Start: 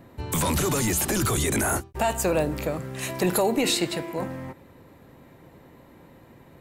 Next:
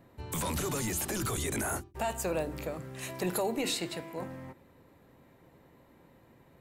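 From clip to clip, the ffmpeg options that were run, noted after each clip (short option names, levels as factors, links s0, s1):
-af "bandreject=f=50:t=h:w=6,bandreject=f=100:t=h:w=6,bandreject=f=150:t=h:w=6,bandreject=f=200:t=h:w=6,bandreject=f=250:t=h:w=6,bandreject=f=300:t=h:w=6,bandreject=f=350:t=h:w=6,volume=0.376"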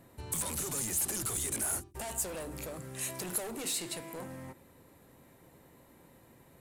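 -af "asoftclip=type=hard:threshold=0.0188,acompressor=threshold=0.0112:ratio=6,equalizer=f=9800:t=o:w=1.3:g=13.5"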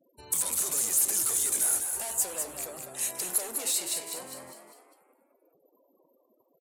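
-filter_complex "[0:a]bass=f=250:g=-13,treble=f=4000:g=7,afftfilt=real='re*gte(hypot(re,im),0.00316)':imag='im*gte(hypot(re,im),0.00316)':win_size=1024:overlap=0.75,asplit=6[s0][s1][s2][s3][s4][s5];[s1]adelay=201,afreqshift=83,volume=0.501[s6];[s2]adelay=402,afreqshift=166,volume=0.226[s7];[s3]adelay=603,afreqshift=249,volume=0.101[s8];[s4]adelay=804,afreqshift=332,volume=0.0457[s9];[s5]adelay=1005,afreqshift=415,volume=0.0207[s10];[s0][s6][s7][s8][s9][s10]amix=inputs=6:normalize=0"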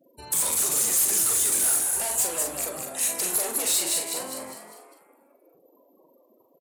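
-filter_complex "[0:a]asoftclip=type=hard:threshold=0.0501,asplit=2[s0][s1];[s1]adelay=42,volume=0.562[s2];[s0][s2]amix=inputs=2:normalize=0,volume=2"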